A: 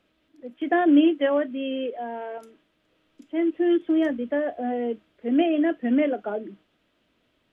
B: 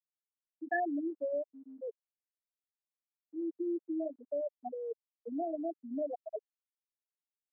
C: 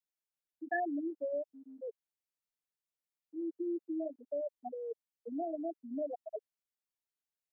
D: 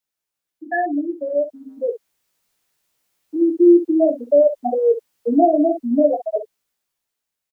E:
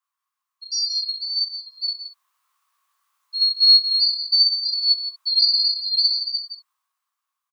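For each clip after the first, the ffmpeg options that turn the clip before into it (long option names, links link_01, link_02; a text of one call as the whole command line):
ffmpeg -i in.wav -filter_complex "[0:a]afftfilt=real='re*gte(hypot(re,im),0.398)':imag='im*gte(hypot(re,im),0.398)':win_size=1024:overlap=0.75,highpass=640,acrossover=split=1000[link_01][link_02];[link_01]alimiter=level_in=4dB:limit=-24dB:level=0:latency=1:release=279,volume=-4dB[link_03];[link_03][link_02]amix=inputs=2:normalize=0,volume=-1.5dB" out.wav
ffmpeg -i in.wav -af "equalizer=frequency=1100:width=5:gain=-3.5,volume=-1.5dB" out.wav
ffmpeg -i in.wav -filter_complex "[0:a]asplit=2[link_01][link_02];[link_02]aecho=0:1:17|63:0.631|0.316[link_03];[link_01][link_03]amix=inputs=2:normalize=0,dynaudnorm=framelen=300:gausssize=11:maxgain=13.5dB,volume=8dB" out.wav
ffmpeg -i in.wav -af "afftfilt=real='real(if(lt(b,736),b+184*(1-2*mod(floor(b/184),2)),b),0)':imag='imag(if(lt(b,736),b+184*(1-2*mod(floor(b/184),2)),b),0)':win_size=2048:overlap=0.75,highpass=frequency=1100:width_type=q:width=13,aecho=1:1:32.07|169.1:0.355|0.316,volume=-4.5dB" out.wav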